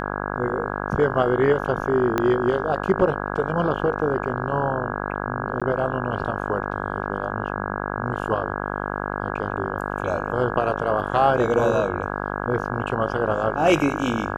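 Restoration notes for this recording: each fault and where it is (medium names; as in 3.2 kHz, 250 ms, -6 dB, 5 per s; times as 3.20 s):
buzz 50 Hz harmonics 33 -28 dBFS
2.18 s: pop -8 dBFS
5.60–5.62 s: dropout 16 ms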